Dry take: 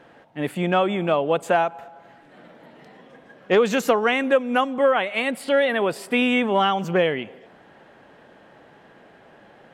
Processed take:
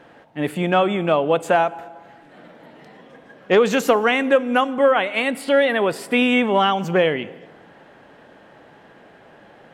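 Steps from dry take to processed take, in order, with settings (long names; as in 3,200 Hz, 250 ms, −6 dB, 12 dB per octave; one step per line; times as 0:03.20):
feedback delay network reverb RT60 1.4 s, low-frequency decay 1.25×, high-frequency decay 0.75×, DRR 18 dB
level +2.5 dB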